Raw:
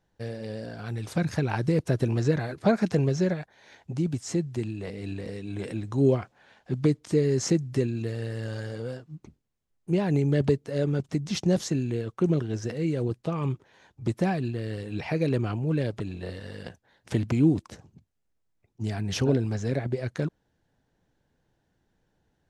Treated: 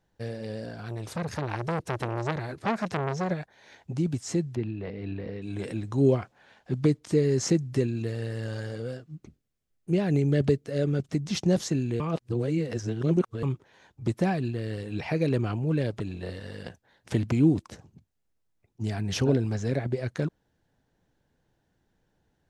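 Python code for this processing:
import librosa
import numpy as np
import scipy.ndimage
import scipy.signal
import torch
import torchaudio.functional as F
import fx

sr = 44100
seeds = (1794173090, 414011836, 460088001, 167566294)

y = fx.transformer_sat(x, sr, knee_hz=1600.0, at=(0.71, 3.31))
y = fx.gaussian_blur(y, sr, sigma=2.3, at=(4.55, 5.42))
y = fx.peak_eq(y, sr, hz=930.0, db=-8.0, octaves=0.37, at=(8.76, 11.13))
y = fx.edit(y, sr, fx.reverse_span(start_s=12.0, length_s=1.43), tone=tone)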